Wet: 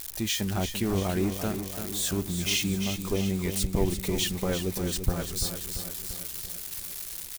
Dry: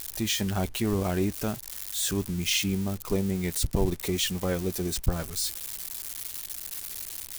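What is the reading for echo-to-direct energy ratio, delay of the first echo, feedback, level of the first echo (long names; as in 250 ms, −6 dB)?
−6.5 dB, 341 ms, 59%, −8.5 dB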